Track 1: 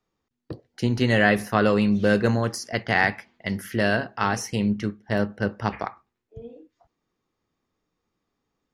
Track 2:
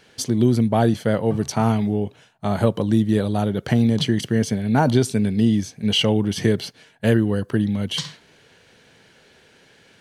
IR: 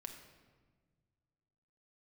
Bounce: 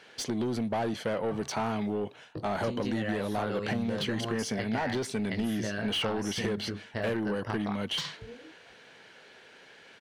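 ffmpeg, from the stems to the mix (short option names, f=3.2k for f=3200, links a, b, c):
-filter_complex "[0:a]flanger=delay=18.5:depth=2.8:speed=0.3,acompressor=threshold=-29dB:ratio=4,adelay=1850,volume=-1dB[a];[1:a]asplit=2[b][c];[c]highpass=f=720:p=1,volume=23dB,asoftclip=type=tanh:threshold=-4dB[d];[b][d]amix=inputs=2:normalize=0,lowpass=f=2.5k:p=1,volume=-6dB,volume=-13.5dB[e];[a][e]amix=inputs=2:normalize=0,acompressor=threshold=-27dB:ratio=6"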